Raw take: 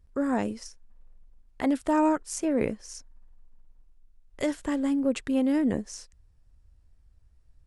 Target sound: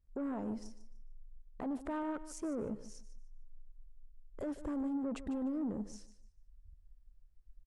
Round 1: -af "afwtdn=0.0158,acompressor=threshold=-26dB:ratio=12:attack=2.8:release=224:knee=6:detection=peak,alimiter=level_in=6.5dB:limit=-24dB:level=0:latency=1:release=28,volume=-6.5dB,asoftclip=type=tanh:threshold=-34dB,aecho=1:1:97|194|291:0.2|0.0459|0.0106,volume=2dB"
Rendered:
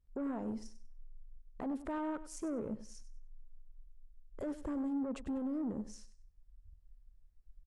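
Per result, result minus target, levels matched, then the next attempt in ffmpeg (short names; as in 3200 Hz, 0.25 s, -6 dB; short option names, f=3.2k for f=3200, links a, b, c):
compressor: peak gain reduction +9.5 dB; echo 52 ms early
-af "afwtdn=0.0158,alimiter=level_in=6.5dB:limit=-24dB:level=0:latency=1:release=28,volume=-6.5dB,asoftclip=type=tanh:threshold=-34dB,aecho=1:1:97|194|291:0.2|0.0459|0.0106,volume=2dB"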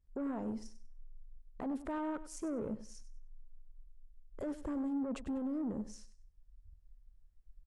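echo 52 ms early
-af "afwtdn=0.0158,alimiter=level_in=6.5dB:limit=-24dB:level=0:latency=1:release=28,volume=-6.5dB,asoftclip=type=tanh:threshold=-34dB,aecho=1:1:149|298|447:0.2|0.0459|0.0106,volume=2dB"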